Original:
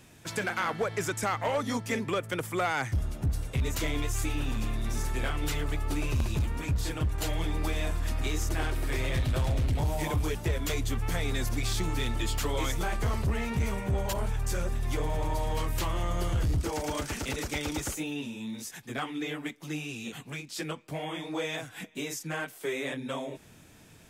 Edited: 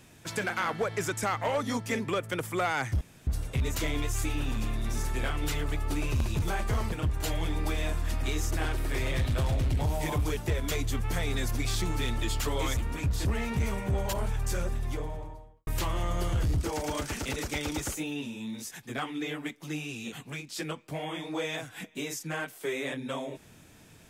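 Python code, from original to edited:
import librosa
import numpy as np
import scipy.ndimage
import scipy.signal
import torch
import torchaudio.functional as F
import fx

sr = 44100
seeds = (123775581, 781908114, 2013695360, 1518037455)

y = fx.studio_fade_out(x, sr, start_s=14.55, length_s=1.12)
y = fx.edit(y, sr, fx.room_tone_fill(start_s=3.01, length_s=0.26),
    fx.swap(start_s=6.42, length_s=0.48, other_s=12.75, other_length_s=0.5), tone=tone)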